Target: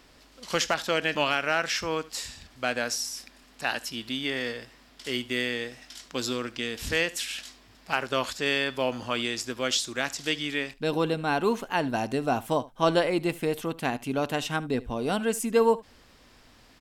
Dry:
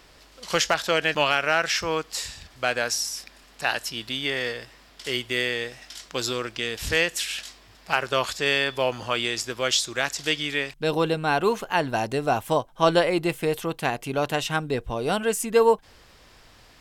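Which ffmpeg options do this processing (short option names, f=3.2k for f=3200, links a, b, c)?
-filter_complex "[0:a]equalizer=f=250:t=o:w=0.48:g=8.5,asplit=2[a][b];[b]aecho=0:1:74:0.1[c];[a][c]amix=inputs=2:normalize=0,volume=-4dB"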